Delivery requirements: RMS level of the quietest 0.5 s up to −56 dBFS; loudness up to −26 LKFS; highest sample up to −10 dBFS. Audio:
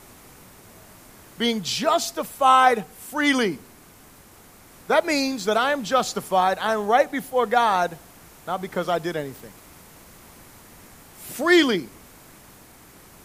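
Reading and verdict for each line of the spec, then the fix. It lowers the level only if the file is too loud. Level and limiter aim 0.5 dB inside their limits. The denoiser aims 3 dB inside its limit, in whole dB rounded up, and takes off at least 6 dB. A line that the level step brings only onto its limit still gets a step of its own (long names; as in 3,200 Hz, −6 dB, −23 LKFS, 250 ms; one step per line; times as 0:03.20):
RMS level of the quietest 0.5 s −49 dBFS: out of spec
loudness −21.5 LKFS: out of spec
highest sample −4.0 dBFS: out of spec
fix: broadband denoise 6 dB, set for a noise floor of −49 dBFS
level −5 dB
brickwall limiter −10.5 dBFS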